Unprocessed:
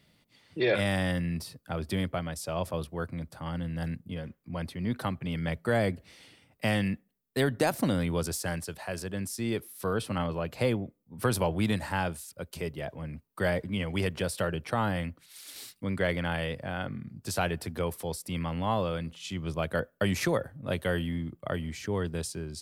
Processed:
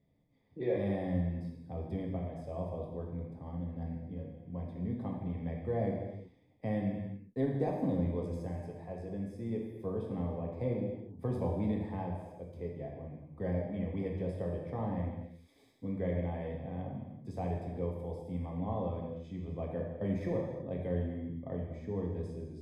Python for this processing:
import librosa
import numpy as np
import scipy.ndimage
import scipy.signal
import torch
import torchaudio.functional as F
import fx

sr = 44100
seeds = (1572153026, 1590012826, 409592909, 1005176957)

y = np.convolve(x, np.full(31, 1.0 / 31))[:len(x)]
y = fx.rev_gated(y, sr, seeds[0], gate_ms=400, shape='falling', drr_db=-1.5)
y = F.gain(torch.from_numpy(y), -7.0).numpy()